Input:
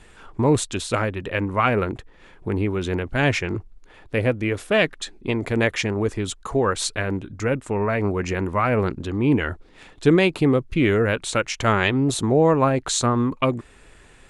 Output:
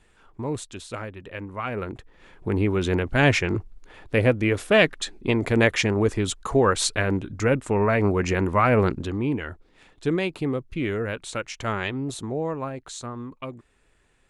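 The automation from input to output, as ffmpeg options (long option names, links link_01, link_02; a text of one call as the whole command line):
ffmpeg -i in.wav -af "volume=1.5dB,afade=type=in:start_time=1.66:duration=1.11:silence=0.237137,afade=type=out:start_time=8.93:duration=0.4:silence=0.334965,afade=type=out:start_time=11.8:duration=1.09:silence=0.473151" out.wav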